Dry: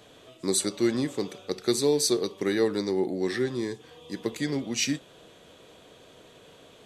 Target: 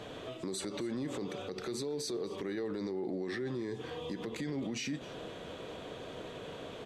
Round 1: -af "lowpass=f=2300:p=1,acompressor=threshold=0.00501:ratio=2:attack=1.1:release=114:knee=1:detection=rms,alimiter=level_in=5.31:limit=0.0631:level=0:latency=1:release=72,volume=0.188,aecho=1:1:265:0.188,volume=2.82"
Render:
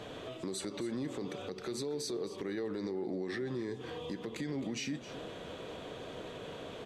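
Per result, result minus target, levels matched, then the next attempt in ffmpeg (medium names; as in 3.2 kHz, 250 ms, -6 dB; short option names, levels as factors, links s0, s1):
compression: peak gain reduction +5 dB; echo-to-direct +6 dB
-af "lowpass=f=2300:p=1,acompressor=threshold=0.015:ratio=2:attack=1.1:release=114:knee=1:detection=rms,alimiter=level_in=5.31:limit=0.0631:level=0:latency=1:release=72,volume=0.188,aecho=1:1:265:0.188,volume=2.82"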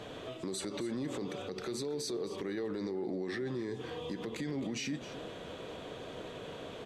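echo-to-direct +6 dB
-af "lowpass=f=2300:p=1,acompressor=threshold=0.015:ratio=2:attack=1.1:release=114:knee=1:detection=rms,alimiter=level_in=5.31:limit=0.0631:level=0:latency=1:release=72,volume=0.188,aecho=1:1:265:0.0944,volume=2.82"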